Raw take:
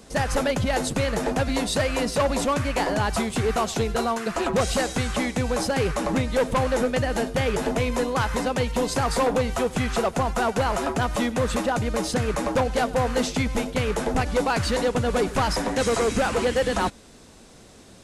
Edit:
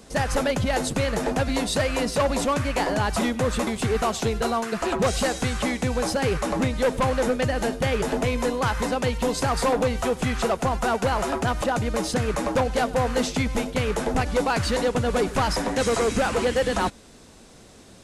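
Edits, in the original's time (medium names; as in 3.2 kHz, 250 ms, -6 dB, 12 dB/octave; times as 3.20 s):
11.18–11.64 s: move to 3.21 s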